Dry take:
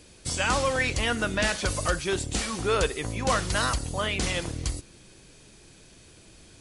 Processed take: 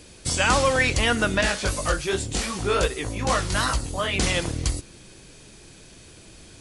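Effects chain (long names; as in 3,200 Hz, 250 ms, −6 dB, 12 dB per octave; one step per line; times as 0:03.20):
0:01.41–0:04.14: chorus effect 2.6 Hz, delay 15.5 ms, depth 6 ms
level +5 dB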